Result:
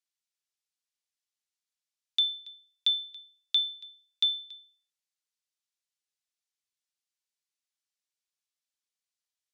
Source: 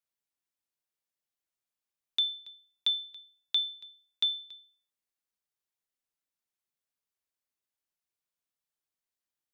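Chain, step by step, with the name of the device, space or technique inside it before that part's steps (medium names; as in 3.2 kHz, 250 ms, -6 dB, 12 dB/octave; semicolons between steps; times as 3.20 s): piezo pickup straight into a mixer (low-pass 5.5 kHz 12 dB/octave; differentiator); trim +9 dB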